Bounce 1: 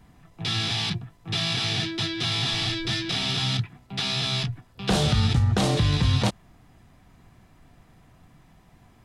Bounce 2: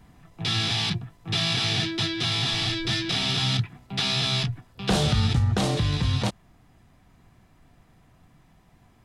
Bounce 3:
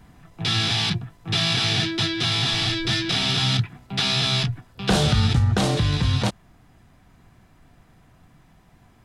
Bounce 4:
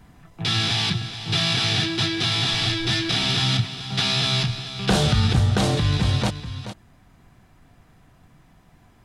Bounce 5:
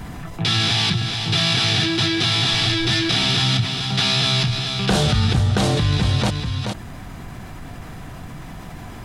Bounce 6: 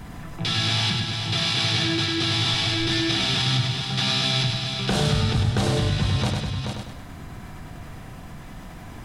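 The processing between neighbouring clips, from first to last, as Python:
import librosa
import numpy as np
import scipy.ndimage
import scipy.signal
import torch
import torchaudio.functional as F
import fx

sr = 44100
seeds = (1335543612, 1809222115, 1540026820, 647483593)

y1 = fx.rider(x, sr, range_db=10, speed_s=2.0)
y2 = fx.peak_eq(y1, sr, hz=1500.0, db=3.5, octaves=0.22)
y2 = y2 * librosa.db_to_amplitude(3.0)
y3 = y2 + 10.0 ** (-11.5 / 20.0) * np.pad(y2, (int(429 * sr / 1000.0), 0))[:len(y2)]
y4 = fx.env_flatten(y3, sr, amount_pct=50)
y5 = fx.echo_feedback(y4, sr, ms=100, feedback_pct=45, wet_db=-4.5)
y5 = y5 * librosa.db_to_amplitude(-5.5)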